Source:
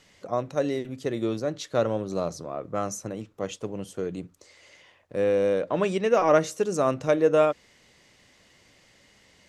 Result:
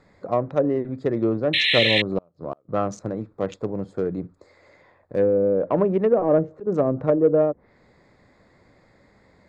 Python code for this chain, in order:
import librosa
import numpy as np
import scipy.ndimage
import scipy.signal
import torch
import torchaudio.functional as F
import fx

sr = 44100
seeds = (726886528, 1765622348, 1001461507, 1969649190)

p1 = fx.wiener(x, sr, points=15)
p2 = fx.env_lowpass_down(p1, sr, base_hz=510.0, full_db=-19.5)
p3 = fx.spec_paint(p2, sr, seeds[0], shape='noise', start_s=1.53, length_s=0.49, low_hz=1700.0, high_hz=4200.0, level_db=-26.0)
p4 = fx.gate_flip(p3, sr, shuts_db=-23.0, range_db=-35, at=(2.18, 2.69))
p5 = fx.auto_swell(p4, sr, attack_ms=143.0, at=(6.21, 6.67))
p6 = 10.0 ** (-19.5 / 20.0) * np.tanh(p5 / 10.0 ** (-19.5 / 20.0))
p7 = p5 + (p6 * librosa.db_to_amplitude(-9.0))
y = p7 * librosa.db_to_amplitude(3.5)